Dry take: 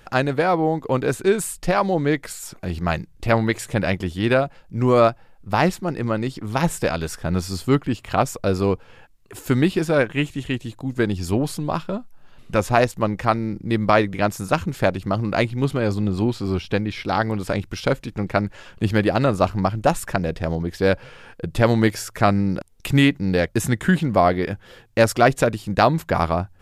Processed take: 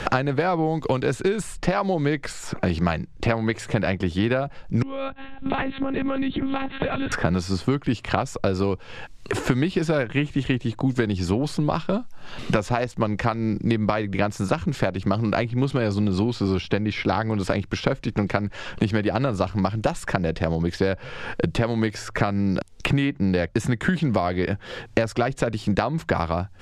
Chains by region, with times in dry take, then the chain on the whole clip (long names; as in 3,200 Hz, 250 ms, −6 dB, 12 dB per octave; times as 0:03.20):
0:04.82–0:07.12: one-pitch LPC vocoder at 8 kHz 270 Hz + parametric band 750 Hz −5.5 dB 2.2 octaves + downward compressor, threshold −35 dBFS
whole clip: downward compressor, threshold −19 dBFS; low-pass filter 6,400 Hz 12 dB per octave; multiband upward and downward compressor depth 100%; level +1 dB